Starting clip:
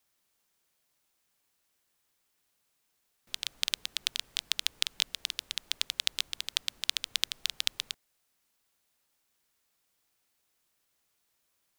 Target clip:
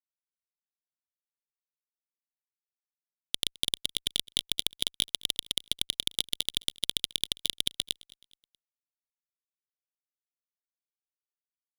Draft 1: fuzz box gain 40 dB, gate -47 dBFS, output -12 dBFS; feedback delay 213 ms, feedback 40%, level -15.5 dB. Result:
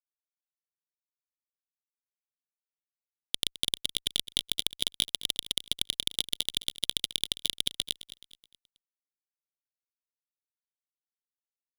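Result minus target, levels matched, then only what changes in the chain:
echo-to-direct +7.5 dB
change: feedback delay 213 ms, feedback 40%, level -23 dB

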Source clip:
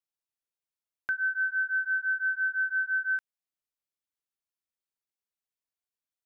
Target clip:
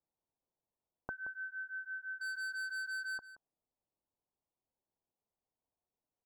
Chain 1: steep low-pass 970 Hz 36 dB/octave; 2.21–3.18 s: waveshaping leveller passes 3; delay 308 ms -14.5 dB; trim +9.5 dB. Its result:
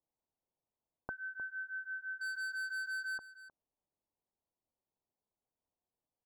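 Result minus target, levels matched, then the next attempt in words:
echo 133 ms late
steep low-pass 970 Hz 36 dB/octave; 2.21–3.18 s: waveshaping leveller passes 3; delay 175 ms -14.5 dB; trim +9.5 dB

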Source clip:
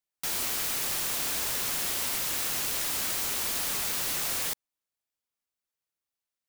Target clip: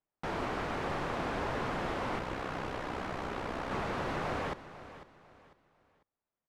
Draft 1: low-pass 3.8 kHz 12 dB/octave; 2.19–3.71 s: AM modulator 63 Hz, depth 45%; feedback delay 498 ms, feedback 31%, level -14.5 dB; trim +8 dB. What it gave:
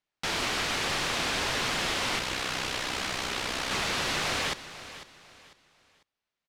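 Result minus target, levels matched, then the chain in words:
4 kHz band +10.5 dB
low-pass 1.1 kHz 12 dB/octave; 2.19–3.71 s: AM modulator 63 Hz, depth 45%; feedback delay 498 ms, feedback 31%, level -14.5 dB; trim +8 dB

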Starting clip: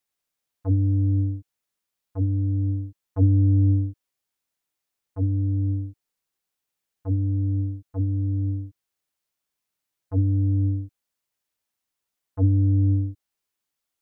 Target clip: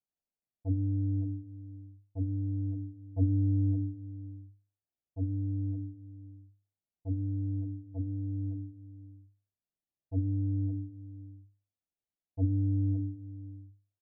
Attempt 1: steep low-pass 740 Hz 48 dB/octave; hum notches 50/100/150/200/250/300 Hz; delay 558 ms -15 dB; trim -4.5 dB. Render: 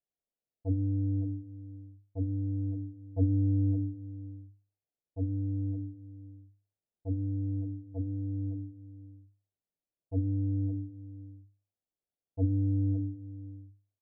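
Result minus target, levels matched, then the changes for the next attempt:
500 Hz band +4.5 dB
add after steep low-pass: peaking EQ 480 Hz -7 dB 0.72 oct

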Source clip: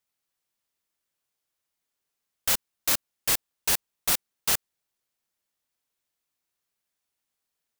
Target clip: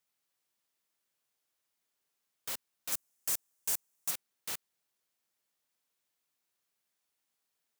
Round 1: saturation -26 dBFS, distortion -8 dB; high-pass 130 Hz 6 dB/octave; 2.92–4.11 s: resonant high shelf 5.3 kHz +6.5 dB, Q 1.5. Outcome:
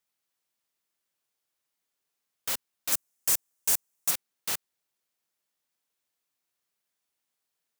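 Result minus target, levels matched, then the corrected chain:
saturation: distortion -4 dB
saturation -35.5 dBFS, distortion -4 dB; high-pass 130 Hz 6 dB/octave; 2.92–4.11 s: resonant high shelf 5.3 kHz +6.5 dB, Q 1.5

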